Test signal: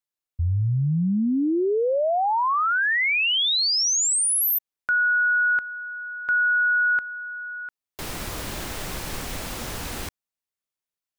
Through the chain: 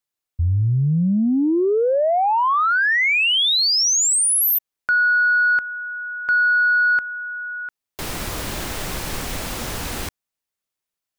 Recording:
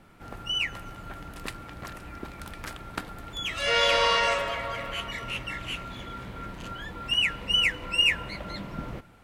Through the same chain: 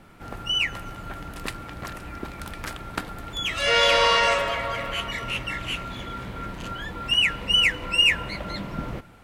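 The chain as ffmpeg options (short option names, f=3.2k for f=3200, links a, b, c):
-af "asoftclip=type=tanh:threshold=-12.5dB,volume=4.5dB"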